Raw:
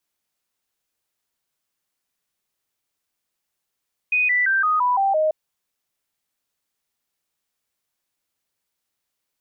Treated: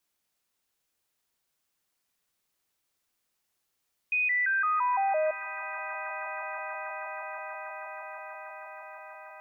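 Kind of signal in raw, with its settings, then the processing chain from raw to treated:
stepped sine 2.49 kHz down, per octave 3, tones 7, 0.17 s, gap 0.00 s -16 dBFS
peak limiter -23.5 dBFS; on a send: echo with a slow build-up 160 ms, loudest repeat 8, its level -17.5 dB

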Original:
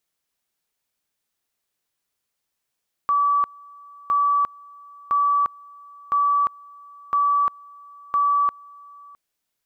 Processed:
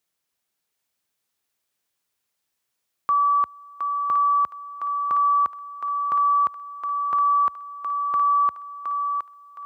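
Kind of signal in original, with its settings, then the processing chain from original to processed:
two-level tone 1.15 kHz -16 dBFS, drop 25.5 dB, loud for 0.35 s, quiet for 0.66 s, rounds 6
high-pass 57 Hz 24 dB/octave; on a send: thinning echo 716 ms, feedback 36%, high-pass 630 Hz, level -4.5 dB

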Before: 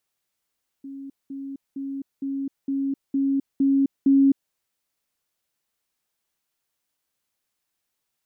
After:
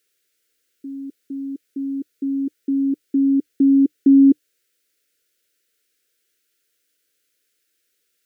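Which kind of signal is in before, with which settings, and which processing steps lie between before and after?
level ladder 274 Hz -34 dBFS, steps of 3 dB, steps 8, 0.26 s 0.20 s
FFT filter 110 Hz 0 dB, 150 Hz -7 dB, 300 Hz +8 dB, 480 Hz +13 dB, 960 Hz -25 dB, 1.4 kHz +9 dB

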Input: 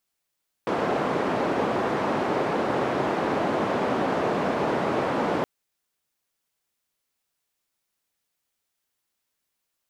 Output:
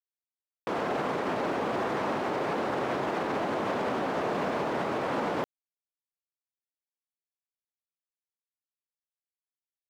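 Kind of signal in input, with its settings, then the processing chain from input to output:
noise band 190–740 Hz, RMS -25 dBFS 4.77 s
bass shelf 350 Hz -3 dB; peak limiter -21.5 dBFS; bit crusher 11-bit

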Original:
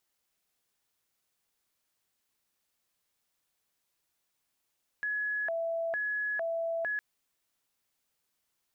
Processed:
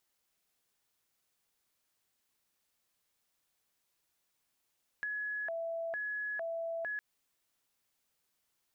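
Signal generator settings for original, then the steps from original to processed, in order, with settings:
siren hi-lo 664–1690 Hz 1.1 per s sine -29.5 dBFS 1.96 s
compression 4:1, threshold -37 dBFS

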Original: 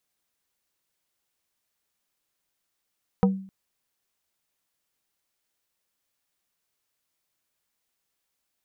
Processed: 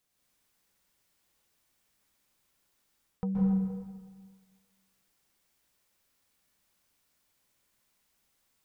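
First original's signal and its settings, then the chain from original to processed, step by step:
wood hit plate, length 0.26 s, lowest mode 192 Hz, decay 0.49 s, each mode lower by 4 dB, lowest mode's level -14 dB
bass shelf 180 Hz +6 dB; reverse; compression 6:1, threshold -32 dBFS; reverse; plate-style reverb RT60 1.6 s, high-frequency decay 0.75×, pre-delay 115 ms, DRR -4.5 dB

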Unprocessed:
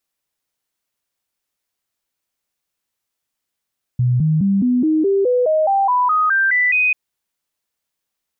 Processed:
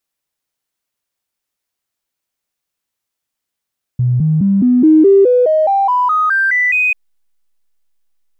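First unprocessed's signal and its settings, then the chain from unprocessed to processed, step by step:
stepped sine 124 Hz up, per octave 3, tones 14, 0.21 s, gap 0.00 s -12.5 dBFS
dynamic bell 350 Hz, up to +7 dB, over -31 dBFS, Q 1.6; in parallel at -10 dB: hysteresis with a dead band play -25 dBFS

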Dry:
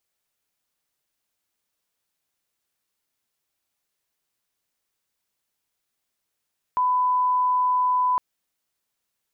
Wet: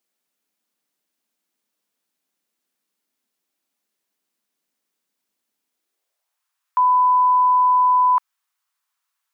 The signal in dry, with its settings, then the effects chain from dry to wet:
line-up tone -18 dBFS 1.41 s
high-pass sweep 230 Hz -> 1.1 kHz, 5.71–6.46 s

